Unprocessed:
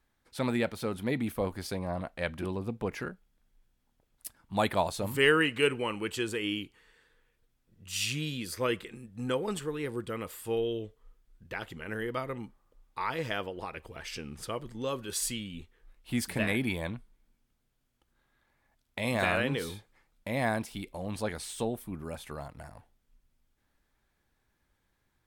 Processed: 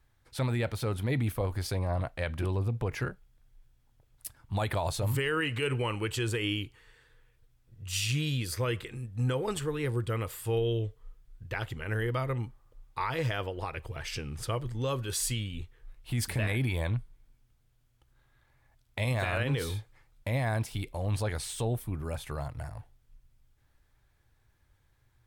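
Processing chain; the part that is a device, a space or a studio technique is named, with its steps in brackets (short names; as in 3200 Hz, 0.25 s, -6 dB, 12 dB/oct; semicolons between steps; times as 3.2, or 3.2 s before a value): car stereo with a boomy subwoofer (resonant low shelf 150 Hz +6 dB, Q 3; limiter -23.5 dBFS, peak gain reduction 11.5 dB); gain +2.5 dB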